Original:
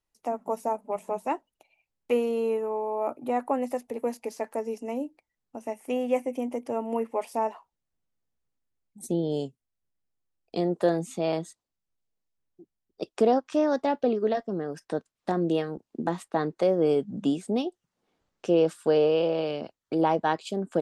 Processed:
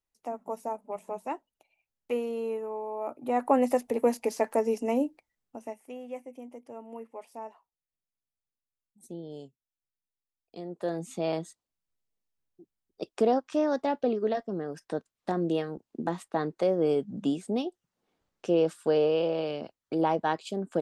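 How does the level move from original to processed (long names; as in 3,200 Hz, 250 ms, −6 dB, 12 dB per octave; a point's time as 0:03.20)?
0:03.11 −5.5 dB
0:03.57 +5 dB
0:05.02 +5 dB
0:05.67 −4.5 dB
0:05.94 −13.5 dB
0:10.64 −13.5 dB
0:11.13 −2.5 dB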